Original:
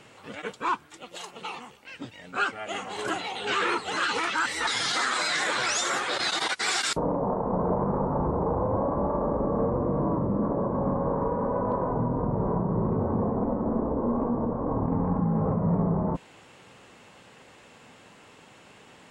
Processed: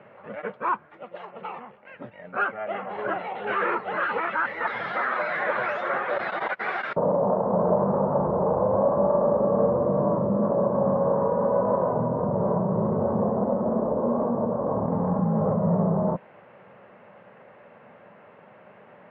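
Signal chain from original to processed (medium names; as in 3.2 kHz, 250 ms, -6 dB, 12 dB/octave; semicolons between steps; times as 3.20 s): cabinet simulation 130–2000 Hz, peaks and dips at 200 Hz +4 dB, 290 Hz -9 dB, 590 Hz +9 dB; trim +1.5 dB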